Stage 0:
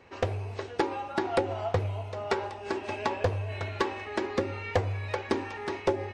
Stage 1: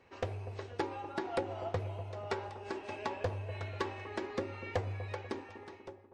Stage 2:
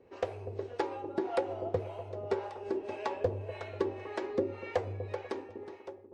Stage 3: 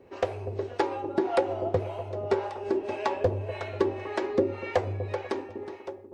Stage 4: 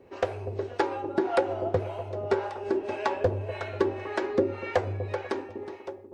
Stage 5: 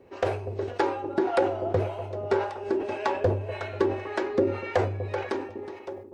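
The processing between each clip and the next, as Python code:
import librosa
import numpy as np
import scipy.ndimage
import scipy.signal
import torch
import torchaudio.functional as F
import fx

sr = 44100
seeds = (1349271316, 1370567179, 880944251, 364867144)

y1 = fx.fade_out_tail(x, sr, length_s=1.21)
y1 = fx.echo_wet_lowpass(y1, sr, ms=244, feedback_pct=52, hz=990.0, wet_db=-12.5)
y1 = y1 * 10.0 ** (-8.0 / 20.0)
y2 = fx.peak_eq(y1, sr, hz=440.0, db=10.5, octaves=1.5)
y2 = fx.harmonic_tremolo(y2, sr, hz=1.8, depth_pct=70, crossover_hz=560.0)
y3 = fx.notch(y2, sr, hz=470.0, q=12.0)
y3 = y3 * 10.0 ** (7.0 / 20.0)
y4 = fx.dynamic_eq(y3, sr, hz=1500.0, q=4.0, threshold_db=-52.0, ratio=4.0, max_db=5)
y5 = fx.sustainer(y4, sr, db_per_s=84.0)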